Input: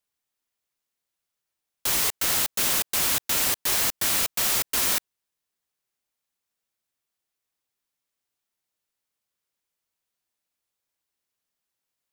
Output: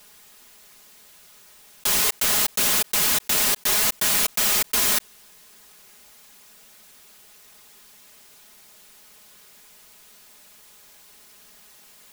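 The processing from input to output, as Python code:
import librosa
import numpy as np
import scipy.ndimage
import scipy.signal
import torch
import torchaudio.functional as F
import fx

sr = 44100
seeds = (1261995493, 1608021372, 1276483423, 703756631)

y = x + 0.7 * np.pad(x, (int(4.8 * sr / 1000.0), 0))[:len(x)]
y = fx.env_flatten(y, sr, amount_pct=50)
y = y * 10.0 ** (1.0 / 20.0)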